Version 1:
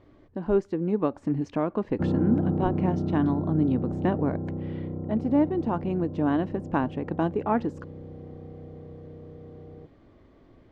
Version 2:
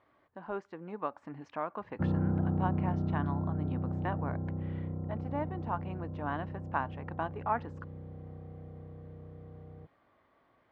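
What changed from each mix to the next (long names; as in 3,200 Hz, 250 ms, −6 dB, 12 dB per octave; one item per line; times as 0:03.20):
speech: add resonant band-pass 1,100 Hz, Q 0.82
master: add parametric band 360 Hz −10 dB 1.6 octaves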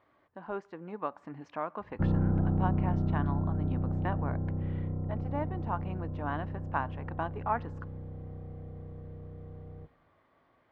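background: remove high-pass filter 93 Hz
reverb: on, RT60 1.7 s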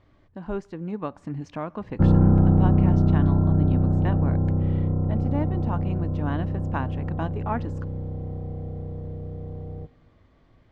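speech: remove resonant band-pass 1,100 Hz, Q 0.82
background +10.5 dB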